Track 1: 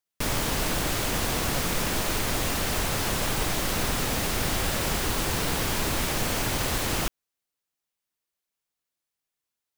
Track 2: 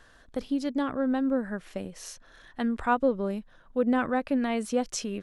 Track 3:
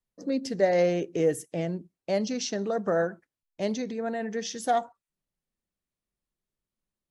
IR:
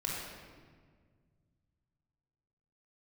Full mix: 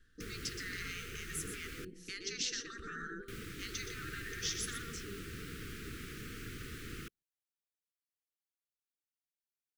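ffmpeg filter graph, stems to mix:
-filter_complex "[0:a]acrossover=split=2700[link_01][link_02];[link_02]acompressor=threshold=-37dB:ratio=4:attack=1:release=60[link_03];[link_01][link_03]amix=inputs=2:normalize=0,volume=-15.5dB,asplit=3[link_04][link_05][link_06];[link_04]atrim=end=1.85,asetpts=PTS-STARTPTS,afade=type=out:start_time=1.846:duration=0.004:curve=hsin[link_07];[link_05]atrim=start=1.85:end=3.28,asetpts=PTS-STARTPTS,volume=0[link_08];[link_06]atrim=start=3.28,asetpts=PTS-STARTPTS,afade=type=in:duration=0.004:curve=hsin[link_09];[link_07][link_08][link_09]concat=n=3:v=0:a=1[link_10];[1:a]lowshelf=frequency=220:gain=9,volume=-15dB[link_11];[2:a]alimiter=limit=-21dB:level=0:latency=1:release=116,volume=-0.5dB,asplit=3[link_12][link_13][link_14];[link_13]volume=-23.5dB[link_15];[link_14]volume=-8dB[link_16];[3:a]atrim=start_sample=2205[link_17];[link_15][link_17]afir=irnorm=-1:irlink=0[link_18];[link_16]aecho=0:1:122:1[link_19];[link_10][link_11][link_12][link_18][link_19]amix=inputs=5:normalize=0,afftfilt=real='re*lt(hypot(re,im),0.0708)':imag='im*lt(hypot(re,im),0.0708)':win_size=1024:overlap=0.75,asuperstop=centerf=760:order=12:qfactor=0.96"

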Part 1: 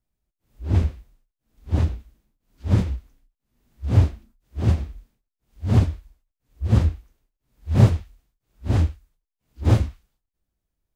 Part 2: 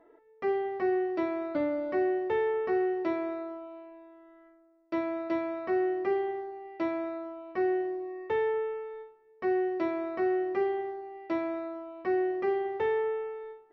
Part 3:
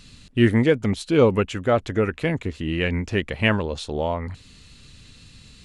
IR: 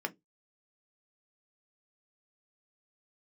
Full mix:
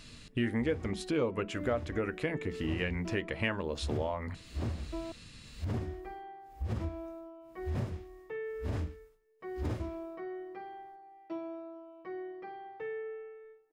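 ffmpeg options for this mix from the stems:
-filter_complex "[0:a]acompressor=threshold=-30dB:ratio=3,volume=-2dB,asplit=2[link_01][link_02];[link_02]volume=-6dB[link_03];[1:a]aecho=1:1:6.3:0.93,volume=-13.5dB,asplit=3[link_04][link_05][link_06];[link_04]atrim=end=5.12,asetpts=PTS-STARTPTS,afade=type=out:start_time=5.116:duration=0.004:curve=hsin[link_07];[link_05]atrim=start=5.12:end=5.74,asetpts=PTS-STARTPTS,volume=0[link_08];[link_06]atrim=start=5.74,asetpts=PTS-STARTPTS,afade=type=in:duration=0.004:curve=hsin[link_09];[link_07][link_08][link_09]concat=n=3:v=0:a=1[link_10];[2:a]volume=-5.5dB,asplit=2[link_11][link_12];[link_12]volume=-6dB[link_13];[3:a]atrim=start_sample=2205[link_14];[link_03][link_13]amix=inputs=2:normalize=0[link_15];[link_15][link_14]afir=irnorm=-1:irlink=0[link_16];[link_01][link_10][link_11][link_16]amix=inputs=4:normalize=0,acompressor=threshold=-32dB:ratio=3"

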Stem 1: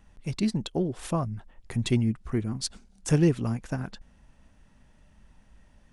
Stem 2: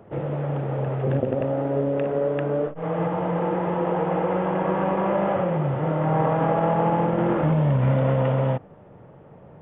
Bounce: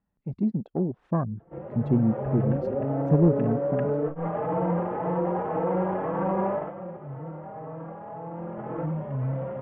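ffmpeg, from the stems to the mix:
ffmpeg -i stem1.wav -i stem2.wav -filter_complex "[0:a]highpass=frequency=120:poles=1,afwtdn=0.02,equalizer=frequency=190:width_type=o:width=0.93:gain=5,volume=-2dB[link_01];[1:a]dynaudnorm=framelen=100:gausssize=13:maxgain=12dB,alimiter=limit=-10dB:level=0:latency=1:release=16,asplit=2[link_02][link_03];[link_03]adelay=4.1,afreqshift=1.9[link_04];[link_02][link_04]amix=inputs=2:normalize=1,adelay=1400,volume=-2.5dB,afade=type=out:start_time=6.54:duration=0.2:silence=0.251189,afade=type=in:start_time=8.28:duration=0.48:silence=0.421697[link_05];[link_01][link_05]amix=inputs=2:normalize=0,lowpass=1500,dynaudnorm=framelen=650:gausssize=3:maxgain=4dB,asoftclip=type=tanh:threshold=-10.5dB" out.wav

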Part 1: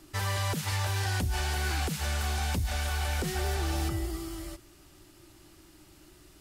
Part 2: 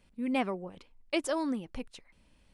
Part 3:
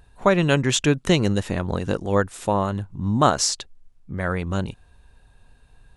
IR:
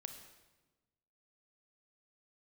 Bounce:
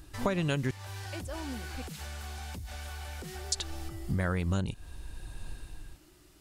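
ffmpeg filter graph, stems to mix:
-filter_complex "[0:a]acompressor=threshold=-35dB:ratio=4,volume=-4dB[link_01];[1:a]alimiter=level_in=2.5dB:limit=-24dB:level=0:latency=1:release=494,volume=-2.5dB,volume=-5dB[link_02];[2:a]lowshelf=frequency=230:gain=7.5,dynaudnorm=framelen=250:gausssize=5:maxgain=14.5dB,highshelf=frequency=3100:gain=10,volume=-5dB,asplit=3[link_03][link_04][link_05];[link_03]atrim=end=0.71,asetpts=PTS-STARTPTS,afade=type=out:start_time=0.706:duration=0.004:curve=hsin[link_06];[link_04]atrim=start=0.71:end=3.52,asetpts=PTS-STARTPTS,volume=0[link_07];[link_05]atrim=start=3.52,asetpts=PTS-STARTPTS,afade=type=in:duration=0.004:curve=hsin[link_08];[link_06][link_07][link_08]concat=n=3:v=0:a=1[link_09];[link_01][link_02][link_09]amix=inputs=3:normalize=0,acompressor=threshold=-27dB:ratio=5"

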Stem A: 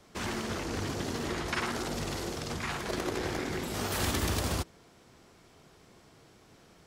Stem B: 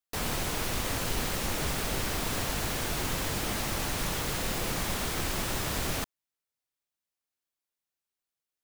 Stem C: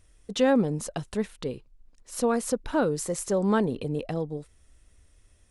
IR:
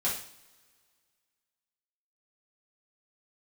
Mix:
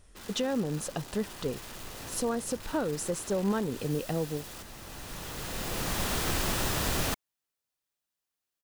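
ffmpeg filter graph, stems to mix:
-filter_complex "[0:a]highpass=frequency=72:width=0.5412,highpass=frequency=72:width=1.3066,aeval=exprs='(mod(31.6*val(0)+1,2)-1)/31.6':channel_layout=same,volume=-11dB[link_01];[1:a]adelay=1100,volume=2dB[link_02];[2:a]alimiter=limit=-22.5dB:level=0:latency=1:release=462,volume=1.5dB,asplit=2[link_03][link_04];[link_04]apad=whole_len=429103[link_05];[link_02][link_05]sidechaincompress=threshold=-50dB:ratio=8:attack=42:release=1170[link_06];[link_01][link_06][link_03]amix=inputs=3:normalize=0,bandreject=frequency=2200:width=17"

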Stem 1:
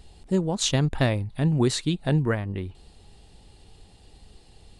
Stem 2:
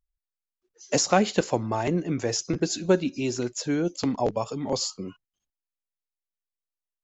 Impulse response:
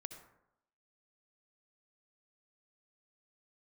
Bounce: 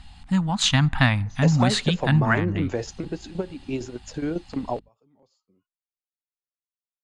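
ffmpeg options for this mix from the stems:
-filter_complex "[0:a]firequalizer=gain_entry='entry(270,0);entry(380,-28);entry(770,3);entry(1300,8)':delay=0.05:min_phase=1,aeval=exprs='val(0)+0.000891*(sin(2*PI*50*n/s)+sin(2*PI*2*50*n/s)/2+sin(2*PI*3*50*n/s)/3+sin(2*PI*4*50*n/s)/4+sin(2*PI*5*50*n/s)/5)':channel_layout=same,volume=2dB,asplit=3[link_01][link_02][link_03];[link_02]volume=-16dB[link_04];[1:a]acompressor=threshold=-26dB:ratio=4,adelay=500,volume=3dB[link_05];[link_03]apad=whole_len=332316[link_06];[link_05][link_06]sidechaingate=range=-34dB:threshold=-45dB:ratio=16:detection=peak[link_07];[2:a]atrim=start_sample=2205[link_08];[link_04][link_08]afir=irnorm=-1:irlink=0[link_09];[link_01][link_07][link_09]amix=inputs=3:normalize=0,aemphasis=mode=reproduction:type=75fm,bandreject=frequency=5600:width=16"

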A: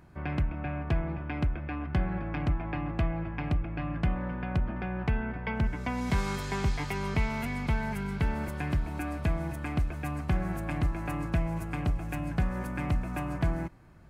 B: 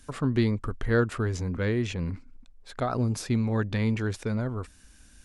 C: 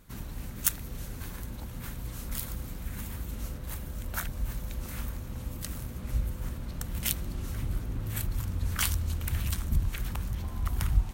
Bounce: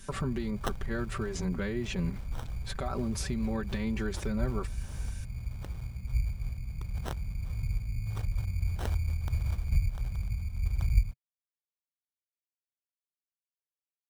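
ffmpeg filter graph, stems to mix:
ffmpeg -i stem1.wav -i stem2.wav -i stem3.wav -filter_complex "[1:a]aecho=1:1:5.2:0.85,acompressor=threshold=-26dB:ratio=6,volume=3dB[link_01];[2:a]firequalizer=gain_entry='entry(130,0);entry(350,-29);entry(5300,-10)':delay=0.05:min_phase=1,acrusher=samples=19:mix=1:aa=0.000001,volume=0.5dB[link_02];[link_01]alimiter=level_in=0.5dB:limit=-24dB:level=0:latency=1:release=472,volume=-0.5dB,volume=0dB[link_03];[link_02][link_03]amix=inputs=2:normalize=0" out.wav

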